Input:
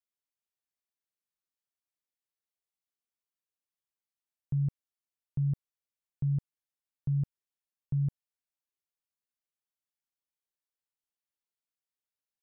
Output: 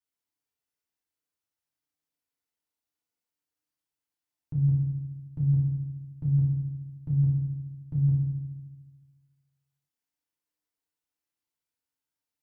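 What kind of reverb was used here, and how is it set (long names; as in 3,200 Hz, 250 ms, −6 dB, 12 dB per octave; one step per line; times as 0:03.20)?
feedback delay network reverb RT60 1.1 s, low-frequency decay 1.4×, high-frequency decay 0.65×, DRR −6 dB
level −3.5 dB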